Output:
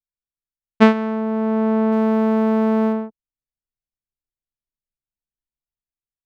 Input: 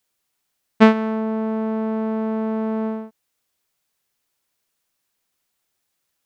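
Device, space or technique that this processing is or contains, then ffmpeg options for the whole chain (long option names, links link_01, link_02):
voice memo with heavy noise removal: -filter_complex "[0:a]asettb=1/sr,asplit=3[link_01][link_02][link_03];[link_01]atrim=end=1.924[link_04];[link_02]atrim=start=1.92:end=2.93,asetpts=PTS-STARTPTS,afade=type=in:duration=0.004:curve=qsin,afade=type=out:start_time=1.006:duration=0.004:curve=qsin,aemphasis=mode=production:type=50kf[link_05];[link_03]atrim=start=2.926[link_06];[link_04][link_05]acrossfade=duration=0.004:curve1=hsin:curve2=qsin[link_07];[link_07][link_06]acrossfade=duration=0.004:curve1=qsin:curve2=hsin,anlmdn=0.0631,dynaudnorm=framelen=100:gausssize=11:maxgain=6dB"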